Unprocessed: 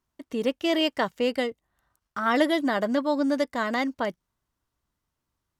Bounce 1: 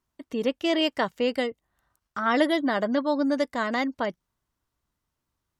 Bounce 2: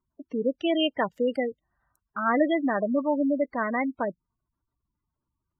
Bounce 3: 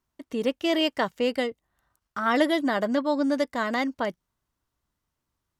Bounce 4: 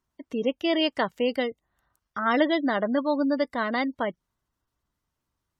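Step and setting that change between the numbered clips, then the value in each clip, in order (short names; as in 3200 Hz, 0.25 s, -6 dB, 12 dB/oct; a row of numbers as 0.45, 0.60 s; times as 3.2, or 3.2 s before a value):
spectral gate, under each frame's peak: -45, -15, -60, -30 dB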